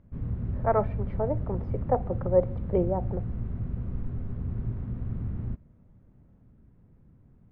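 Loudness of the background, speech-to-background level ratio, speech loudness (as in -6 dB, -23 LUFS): -34.0 LUFS, 4.5 dB, -29.5 LUFS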